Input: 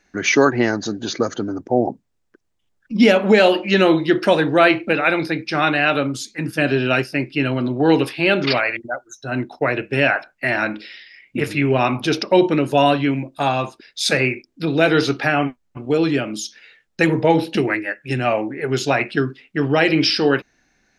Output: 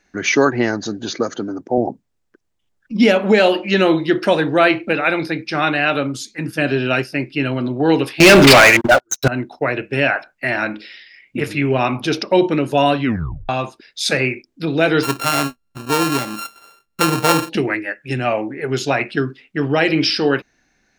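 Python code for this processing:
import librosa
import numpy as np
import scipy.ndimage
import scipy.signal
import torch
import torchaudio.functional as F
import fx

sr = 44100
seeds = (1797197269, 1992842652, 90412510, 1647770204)

y = fx.highpass(x, sr, hz=140.0, slope=12, at=(1.11, 1.78))
y = fx.leveller(y, sr, passes=5, at=(8.2, 9.28))
y = fx.sample_sort(y, sr, block=32, at=(15.02, 17.48), fade=0.02)
y = fx.edit(y, sr, fx.tape_stop(start_s=13.03, length_s=0.46), tone=tone)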